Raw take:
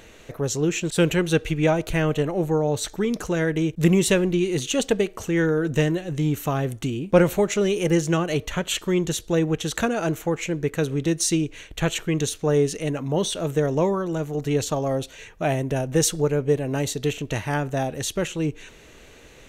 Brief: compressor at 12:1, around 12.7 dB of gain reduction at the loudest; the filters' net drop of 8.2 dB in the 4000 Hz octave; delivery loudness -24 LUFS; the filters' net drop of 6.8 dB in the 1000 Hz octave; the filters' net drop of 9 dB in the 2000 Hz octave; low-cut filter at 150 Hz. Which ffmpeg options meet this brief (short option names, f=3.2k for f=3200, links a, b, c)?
-af "highpass=150,equalizer=f=1k:t=o:g=-8,equalizer=f=2k:t=o:g=-7,equalizer=f=4k:t=o:g=-8,acompressor=threshold=-26dB:ratio=12,volume=7.5dB"